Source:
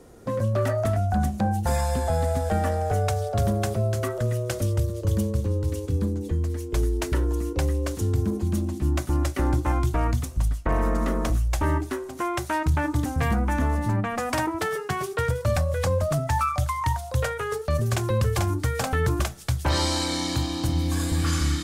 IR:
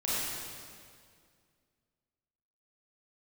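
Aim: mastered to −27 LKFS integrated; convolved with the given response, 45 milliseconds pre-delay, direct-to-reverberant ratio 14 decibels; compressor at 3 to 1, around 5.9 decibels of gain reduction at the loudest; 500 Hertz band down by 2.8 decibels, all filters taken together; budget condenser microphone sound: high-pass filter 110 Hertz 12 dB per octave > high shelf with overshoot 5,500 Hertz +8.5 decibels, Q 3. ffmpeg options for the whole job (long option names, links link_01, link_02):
-filter_complex "[0:a]equalizer=frequency=500:width_type=o:gain=-3.5,acompressor=threshold=-27dB:ratio=3,asplit=2[link_01][link_02];[1:a]atrim=start_sample=2205,adelay=45[link_03];[link_02][link_03]afir=irnorm=-1:irlink=0,volume=-22dB[link_04];[link_01][link_04]amix=inputs=2:normalize=0,highpass=110,highshelf=frequency=5500:width_type=q:width=3:gain=8.5,volume=3dB"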